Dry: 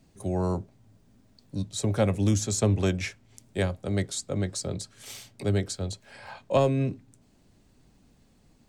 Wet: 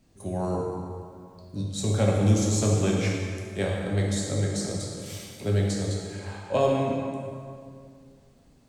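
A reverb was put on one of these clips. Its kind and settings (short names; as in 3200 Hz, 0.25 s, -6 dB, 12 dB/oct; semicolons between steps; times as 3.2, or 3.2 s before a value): plate-style reverb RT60 2.3 s, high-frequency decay 0.7×, DRR -3 dB; gain -3 dB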